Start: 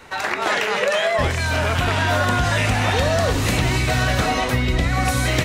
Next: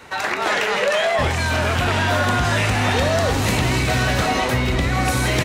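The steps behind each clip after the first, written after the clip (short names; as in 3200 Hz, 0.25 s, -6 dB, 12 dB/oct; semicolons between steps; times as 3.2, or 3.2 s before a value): HPF 52 Hz; soft clip -12.5 dBFS, distortion -20 dB; on a send: frequency-shifting echo 0.163 s, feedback 63%, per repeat +140 Hz, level -12.5 dB; on the sum: gain +1.5 dB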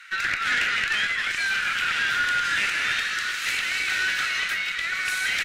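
Chebyshev high-pass 1400 Hz, order 5; high shelf 5000 Hz -11.5 dB; tube stage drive 19 dB, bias 0.35; gain +4 dB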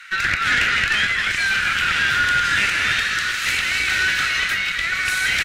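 bell 68 Hz +11 dB 2.8 oct; echo 0.245 s -14.5 dB; gain +5 dB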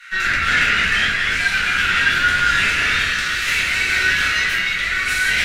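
shoebox room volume 110 m³, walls mixed, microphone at 1.8 m; gain -5.5 dB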